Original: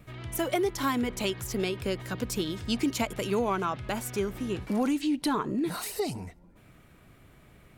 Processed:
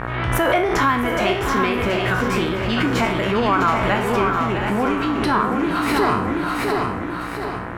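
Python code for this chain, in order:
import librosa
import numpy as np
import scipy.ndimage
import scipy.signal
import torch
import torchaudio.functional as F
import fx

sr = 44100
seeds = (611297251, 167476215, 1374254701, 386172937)

p1 = fx.spec_trails(x, sr, decay_s=0.49)
p2 = 10.0 ** (-30.5 / 20.0) * np.tanh(p1 / 10.0 ** (-30.5 / 20.0))
p3 = p1 + (p2 * librosa.db_to_amplitude(-4.5))
p4 = fx.bass_treble(p3, sr, bass_db=3, treble_db=-12)
p5 = fx.echo_feedback(p4, sr, ms=727, feedback_pct=41, wet_db=-6.0)
p6 = fx.rider(p5, sr, range_db=4, speed_s=0.5)
p7 = fx.dmg_buzz(p6, sr, base_hz=60.0, harmonics=31, level_db=-38.0, tilt_db=-4, odd_only=False)
p8 = fx.peak_eq(p7, sr, hz=1400.0, db=10.5, octaves=2.4)
p9 = p8 + fx.echo_single(p8, sr, ms=656, db=-8.0, dry=0)
y = fx.pre_swell(p9, sr, db_per_s=29.0)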